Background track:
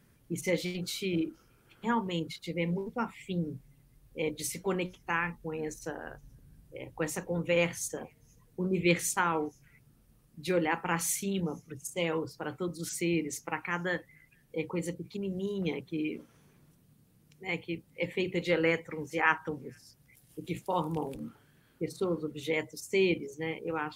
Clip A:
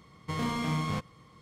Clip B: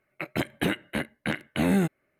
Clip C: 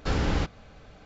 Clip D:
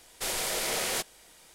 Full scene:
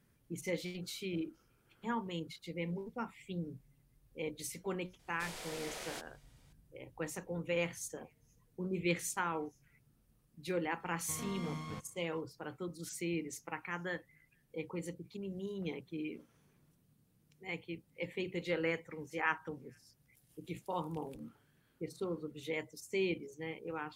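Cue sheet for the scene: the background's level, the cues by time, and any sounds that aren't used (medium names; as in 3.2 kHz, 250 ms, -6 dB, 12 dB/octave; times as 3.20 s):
background track -7.5 dB
4.99 s: add D -13 dB + peaking EQ 13 kHz -7.5 dB 1.4 oct
10.80 s: add A -12.5 dB
not used: B, C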